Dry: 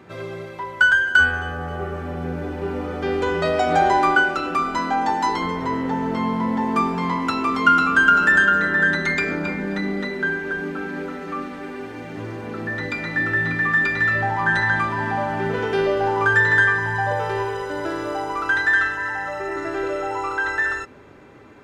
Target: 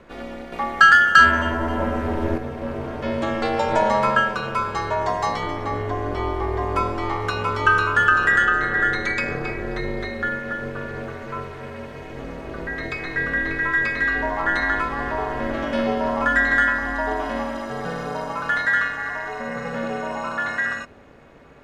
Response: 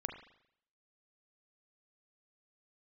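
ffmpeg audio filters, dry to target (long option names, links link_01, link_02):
-filter_complex "[0:a]asettb=1/sr,asplit=3[link_01][link_02][link_03];[link_01]atrim=end=0.524[link_04];[link_02]atrim=start=0.52:end=2.38,asetpts=PTS-STARTPTS,afade=type=in:duration=0.004:curve=qsin,afade=type=out:start_time=1.856:duration=0.004:curve=qsin,acontrast=86[link_05];[link_03]atrim=start=2.376[link_06];[link_04][link_05]acrossfade=duration=0.004:curve1=hsin:curve2=qsin[link_07];[link_07][link_06]acrossfade=duration=0.004:curve1=qsin:curve2=hsin,aeval=exprs='val(0)*sin(2*PI*160*n/s)':channel_layout=same,volume=1dB"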